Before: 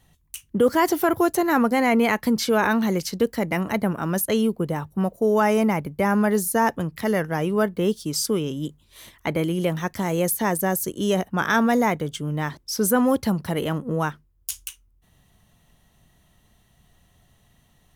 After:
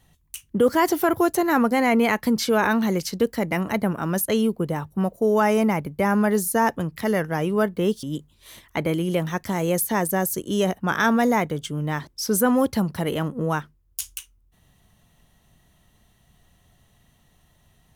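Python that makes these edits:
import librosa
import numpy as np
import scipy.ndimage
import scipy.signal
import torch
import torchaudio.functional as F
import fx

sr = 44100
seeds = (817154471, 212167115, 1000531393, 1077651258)

y = fx.edit(x, sr, fx.cut(start_s=8.03, length_s=0.5), tone=tone)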